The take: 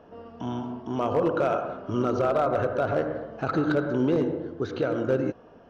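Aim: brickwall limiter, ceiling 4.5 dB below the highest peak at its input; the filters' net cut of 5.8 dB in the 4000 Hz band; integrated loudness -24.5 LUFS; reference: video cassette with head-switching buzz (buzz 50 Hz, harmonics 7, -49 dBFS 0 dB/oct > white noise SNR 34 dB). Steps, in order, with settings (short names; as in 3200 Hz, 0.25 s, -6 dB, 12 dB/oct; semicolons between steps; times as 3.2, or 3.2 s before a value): bell 4000 Hz -8 dB; limiter -20 dBFS; buzz 50 Hz, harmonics 7, -49 dBFS 0 dB/oct; white noise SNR 34 dB; gain +5 dB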